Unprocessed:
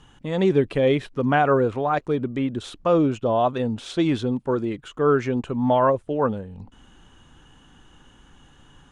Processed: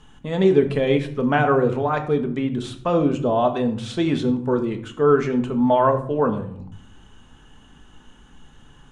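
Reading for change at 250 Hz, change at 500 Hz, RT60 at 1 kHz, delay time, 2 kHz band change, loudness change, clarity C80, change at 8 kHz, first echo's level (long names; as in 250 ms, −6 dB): +2.0 dB, +2.0 dB, 0.55 s, no echo audible, +1.5 dB, +1.5 dB, 15.0 dB, can't be measured, no echo audible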